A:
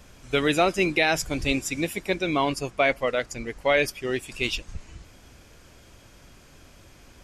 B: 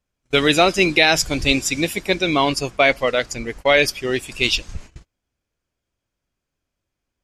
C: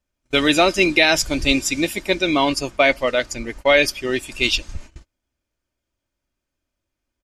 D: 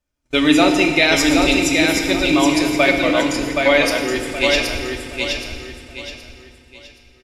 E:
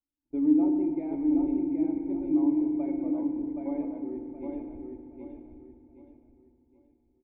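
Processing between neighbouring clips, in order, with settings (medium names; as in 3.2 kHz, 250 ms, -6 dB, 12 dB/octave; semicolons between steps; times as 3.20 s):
gate -40 dBFS, range -35 dB; dynamic bell 4.5 kHz, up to +7 dB, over -42 dBFS, Q 1.1; trim +5.5 dB
comb 3.3 ms, depth 38%; trim -1 dB
on a send: feedback delay 772 ms, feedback 33%, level -4 dB; on the sum: FDN reverb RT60 2.2 s, low-frequency decay 1.45×, high-frequency decay 0.8×, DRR 3 dB; trim -1 dB
cascade formant filter u; trim -6.5 dB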